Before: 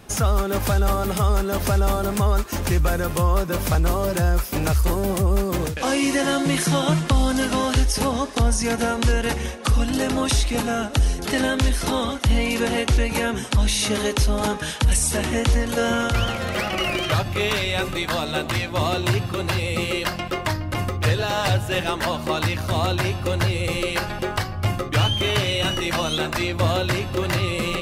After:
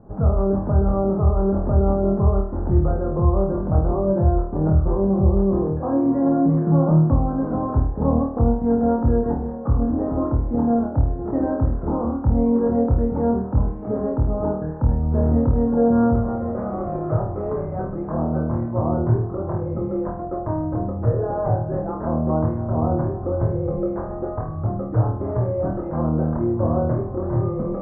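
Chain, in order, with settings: Bessel low-pass 650 Hz, order 8; flutter echo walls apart 4.4 m, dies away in 0.51 s

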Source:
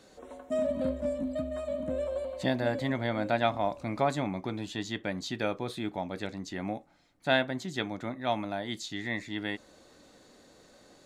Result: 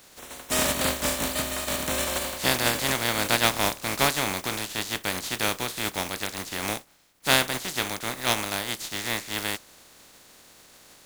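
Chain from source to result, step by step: spectral contrast lowered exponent 0.28; gain +5 dB

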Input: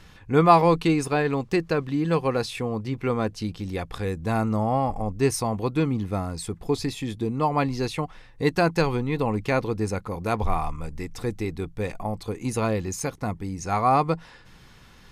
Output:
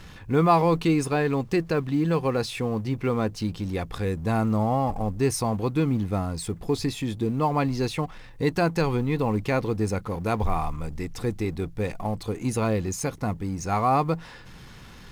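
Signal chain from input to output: G.711 law mismatch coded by mu; bell 150 Hz +2.5 dB 2.9 oct; in parallel at 0 dB: limiter -13 dBFS, peak gain reduction 9.5 dB; on the sum: gain -7.5 dB

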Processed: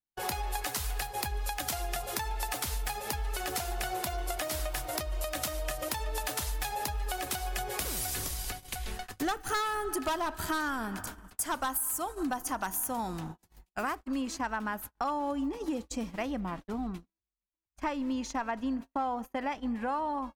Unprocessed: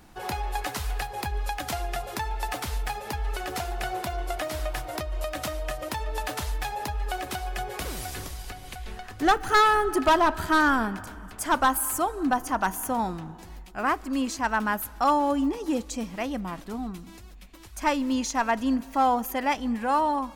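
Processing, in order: high shelf 4800 Hz +11 dB, from 13.95 s -3 dB, from 16.31 s -10 dB; compressor 6:1, threshold -30 dBFS, peak gain reduction 14.5 dB; gate -38 dBFS, range -51 dB

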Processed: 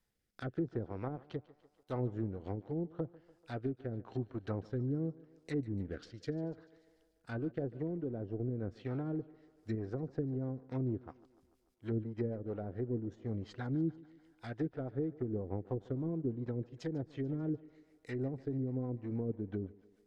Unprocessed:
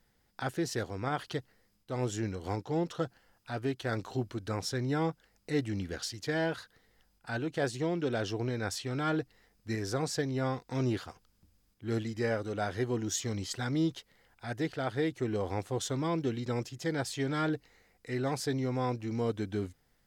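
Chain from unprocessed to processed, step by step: G.711 law mismatch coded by A; treble ducked by the level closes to 390 Hz, closed at -30 dBFS; rotary speaker horn 0.85 Hz, later 6.3 Hz, at 8.89; thinning echo 0.146 s, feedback 64%, high-pass 210 Hz, level -19.5 dB

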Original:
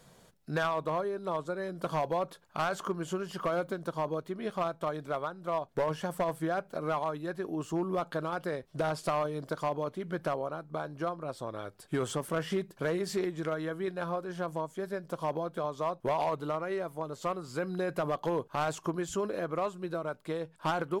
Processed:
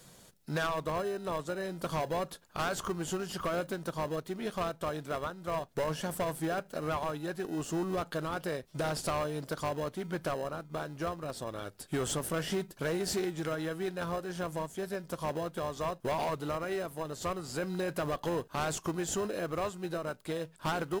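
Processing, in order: high shelf 3000 Hz +10 dB; in parallel at -9 dB: sample-and-hold 39×; on the sum: soft clip -23 dBFS, distortion -18 dB; gain -1.5 dB

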